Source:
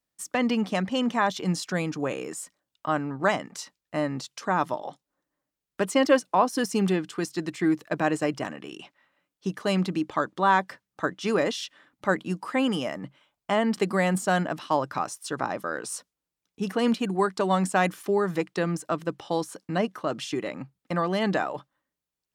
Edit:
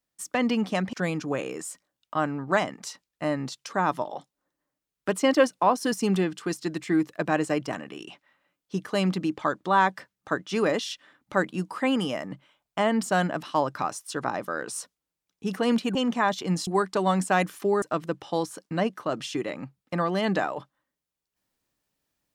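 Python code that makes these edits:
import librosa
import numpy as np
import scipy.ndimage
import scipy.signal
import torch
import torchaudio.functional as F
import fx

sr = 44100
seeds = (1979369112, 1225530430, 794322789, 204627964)

y = fx.edit(x, sr, fx.move(start_s=0.93, length_s=0.72, to_s=17.11),
    fx.cut(start_s=13.75, length_s=0.44),
    fx.cut(start_s=18.26, length_s=0.54), tone=tone)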